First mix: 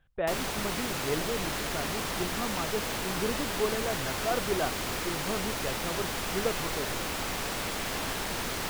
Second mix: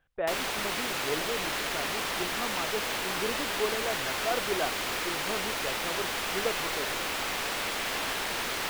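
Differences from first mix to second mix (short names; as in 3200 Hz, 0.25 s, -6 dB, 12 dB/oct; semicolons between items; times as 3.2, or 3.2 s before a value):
background: add high shelf 2400 Hz +11 dB; master: add tone controls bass -9 dB, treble -11 dB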